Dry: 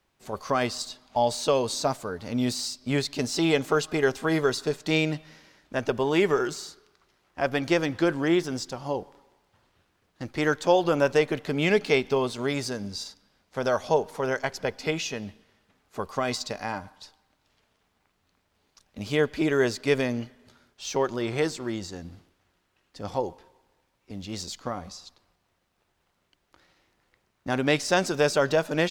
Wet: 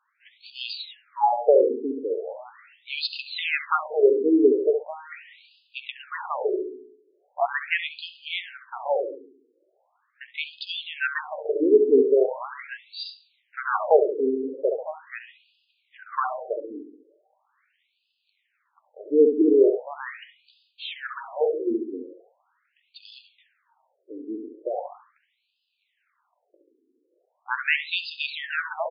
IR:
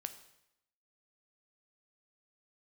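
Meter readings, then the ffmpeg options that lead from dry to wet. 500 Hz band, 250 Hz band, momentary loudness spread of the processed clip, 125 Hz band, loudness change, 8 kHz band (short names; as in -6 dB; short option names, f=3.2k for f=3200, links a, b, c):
+3.0 dB, -0.5 dB, 20 LU, under -30 dB, +2.0 dB, under -40 dB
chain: -filter_complex "[0:a]asplit=2[a][b];[b]adelay=68,lowpass=f=1.2k:p=1,volume=-5.5dB,asplit=2[c][d];[d]adelay=68,lowpass=f=1.2k:p=1,volume=0.53,asplit=2[e][f];[f]adelay=68,lowpass=f=1.2k:p=1,volume=0.53,asplit=2[g][h];[h]adelay=68,lowpass=f=1.2k:p=1,volume=0.53,asplit=2[i][j];[j]adelay=68,lowpass=f=1.2k:p=1,volume=0.53,asplit=2[k][l];[l]adelay=68,lowpass=f=1.2k:p=1,volume=0.53,asplit=2[m][n];[n]adelay=68,lowpass=f=1.2k:p=1,volume=0.53[o];[a][c][e][g][i][k][m][o]amix=inputs=8:normalize=0,asplit=2[p][q];[1:a]atrim=start_sample=2205,afade=t=out:st=0.31:d=0.01,atrim=end_sample=14112,highshelf=f=5.1k:g=-7[r];[q][r]afir=irnorm=-1:irlink=0,volume=2.5dB[s];[p][s]amix=inputs=2:normalize=0,afftfilt=real='re*between(b*sr/1024,330*pow(3600/330,0.5+0.5*sin(2*PI*0.4*pts/sr))/1.41,330*pow(3600/330,0.5+0.5*sin(2*PI*0.4*pts/sr))*1.41)':imag='im*between(b*sr/1024,330*pow(3600/330,0.5+0.5*sin(2*PI*0.4*pts/sr))/1.41,330*pow(3600/330,0.5+0.5*sin(2*PI*0.4*pts/sr))*1.41)':win_size=1024:overlap=0.75,volume=1dB"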